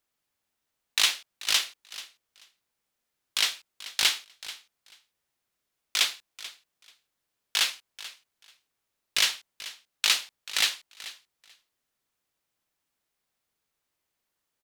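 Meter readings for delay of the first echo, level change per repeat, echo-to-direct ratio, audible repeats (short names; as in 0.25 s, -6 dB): 0.436 s, -16.0 dB, -16.5 dB, 2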